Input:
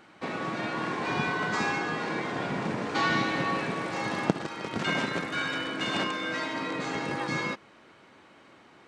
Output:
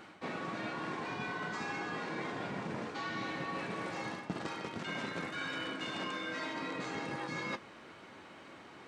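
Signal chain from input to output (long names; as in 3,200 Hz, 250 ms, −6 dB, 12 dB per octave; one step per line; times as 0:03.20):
reversed playback
downward compressor 12 to 1, threshold −38 dBFS, peak gain reduction 21.5 dB
reversed playback
flanger 1.6 Hz, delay 9.1 ms, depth 4.2 ms, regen −59%
level +6.5 dB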